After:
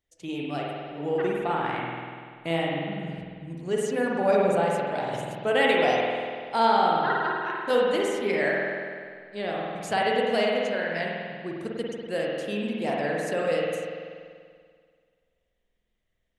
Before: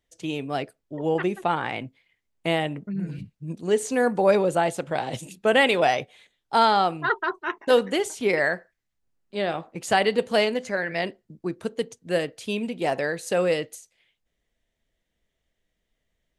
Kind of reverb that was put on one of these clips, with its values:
spring reverb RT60 2 s, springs 48 ms, chirp 60 ms, DRR −3 dB
level −6.5 dB

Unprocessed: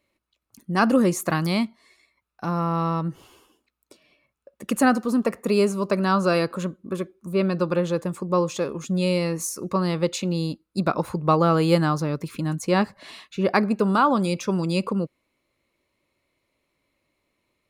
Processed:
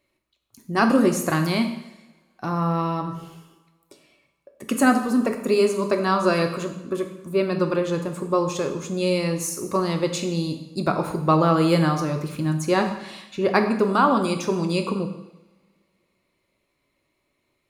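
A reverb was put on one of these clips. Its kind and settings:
coupled-rooms reverb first 0.85 s, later 2.7 s, from −27 dB, DRR 4.5 dB

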